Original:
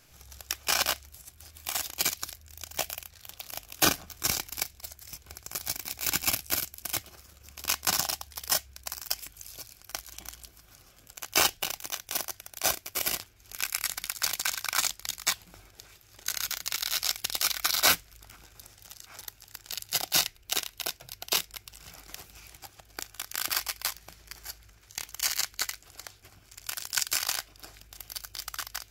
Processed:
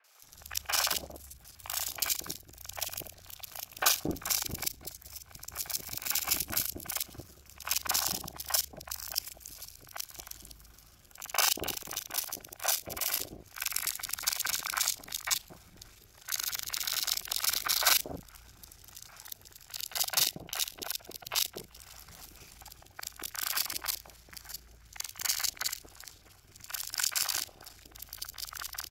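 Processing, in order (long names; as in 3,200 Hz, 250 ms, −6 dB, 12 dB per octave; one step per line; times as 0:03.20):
reversed piece by piece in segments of 36 ms
three-band delay without the direct sound mids, highs, lows 40/230 ms, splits 550/2,400 Hz
level −1 dB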